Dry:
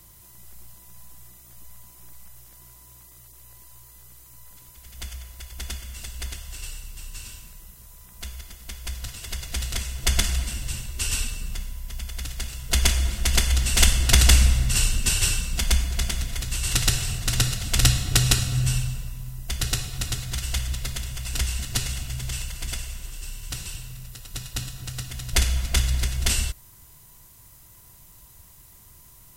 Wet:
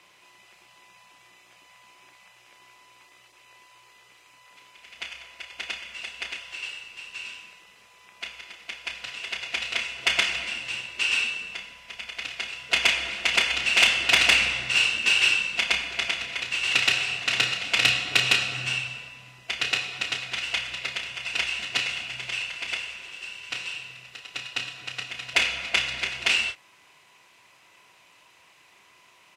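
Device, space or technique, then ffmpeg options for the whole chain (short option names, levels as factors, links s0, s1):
intercom: -filter_complex "[0:a]highpass=450,lowpass=3600,equalizer=f=2500:t=o:w=0.5:g=11.5,asoftclip=type=tanh:threshold=0.251,asplit=2[s0][s1];[s1]adelay=31,volume=0.398[s2];[s0][s2]amix=inputs=2:normalize=0,volume=1.41"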